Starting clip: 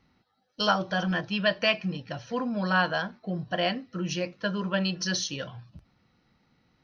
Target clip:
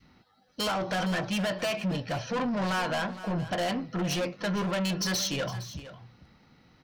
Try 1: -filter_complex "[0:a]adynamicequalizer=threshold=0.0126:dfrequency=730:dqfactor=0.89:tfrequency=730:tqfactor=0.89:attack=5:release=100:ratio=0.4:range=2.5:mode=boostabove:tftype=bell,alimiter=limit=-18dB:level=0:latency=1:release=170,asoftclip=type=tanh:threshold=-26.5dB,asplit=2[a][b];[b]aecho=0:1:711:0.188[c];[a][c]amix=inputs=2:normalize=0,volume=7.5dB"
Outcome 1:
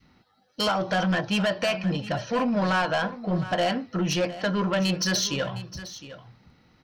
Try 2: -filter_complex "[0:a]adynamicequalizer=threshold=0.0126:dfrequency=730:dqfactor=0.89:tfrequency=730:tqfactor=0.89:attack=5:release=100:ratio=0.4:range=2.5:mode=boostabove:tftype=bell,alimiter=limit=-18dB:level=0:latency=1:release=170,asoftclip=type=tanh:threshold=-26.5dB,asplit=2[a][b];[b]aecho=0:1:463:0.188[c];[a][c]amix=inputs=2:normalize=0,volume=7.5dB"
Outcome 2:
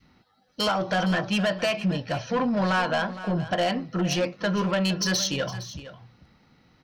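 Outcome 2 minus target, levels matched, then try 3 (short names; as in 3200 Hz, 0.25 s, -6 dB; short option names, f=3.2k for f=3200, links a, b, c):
soft clip: distortion -6 dB
-filter_complex "[0:a]adynamicequalizer=threshold=0.0126:dfrequency=730:dqfactor=0.89:tfrequency=730:tqfactor=0.89:attack=5:release=100:ratio=0.4:range=2.5:mode=boostabove:tftype=bell,alimiter=limit=-18dB:level=0:latency=1:release=170,asoftclip=type=tanh:threshold=-34dB,asplit=2[a][b];[b]aecho=0:1:463:0.188[c];[a][c]amix=inputs=2:normalize=0,volume=7.5dB"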